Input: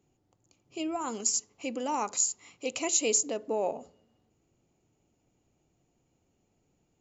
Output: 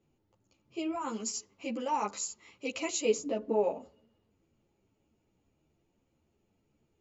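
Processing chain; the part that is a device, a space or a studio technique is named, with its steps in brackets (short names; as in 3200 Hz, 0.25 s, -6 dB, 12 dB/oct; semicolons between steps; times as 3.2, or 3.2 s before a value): string-machine ensemble chorus (ensemble effect; LPF 4600 Hz 12 dB/oct); notch 740 Hz, Q 12; 3.05–3.64 tilt -2 dB/oct; gain +2 dB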